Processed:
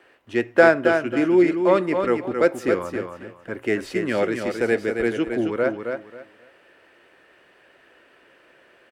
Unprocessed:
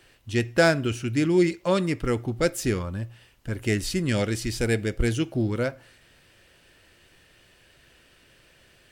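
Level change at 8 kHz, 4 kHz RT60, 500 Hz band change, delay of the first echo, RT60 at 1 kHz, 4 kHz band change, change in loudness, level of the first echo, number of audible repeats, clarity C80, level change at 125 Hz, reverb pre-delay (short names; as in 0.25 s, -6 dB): -10.0 dB, none, +6.5 dB, 0.27 s, none, -5.5 dB, +4.0 dB, -6.0 dB, 3, none, -9.5 dB, none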